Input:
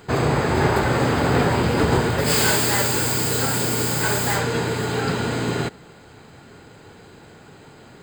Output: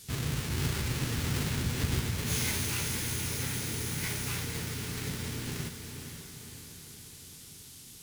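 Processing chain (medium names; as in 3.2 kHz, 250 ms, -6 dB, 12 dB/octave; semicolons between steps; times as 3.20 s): square wave that keeps the level; band noise 2.1–9.5 kHz -37 dBFS; formant shift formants +5 st; amplifier tone stack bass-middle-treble 6-0-2; on a send: echo that smears into a reverb 508 ms, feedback 55%, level -8 dB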